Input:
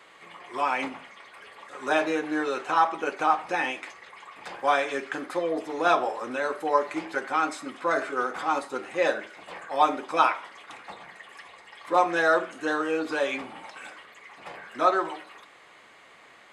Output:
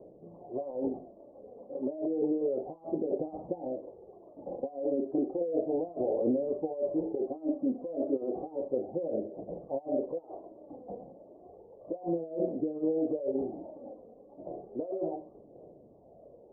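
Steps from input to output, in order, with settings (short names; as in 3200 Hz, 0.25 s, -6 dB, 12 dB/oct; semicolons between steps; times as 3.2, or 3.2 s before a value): phaser 0.32 Hz, delay 4.2 ms, feedback 48%; negative-ratio compressor -31 dBFS, ratio -1; steep low-pass 640 Hz 48 dB/oct; gain +1.5 dB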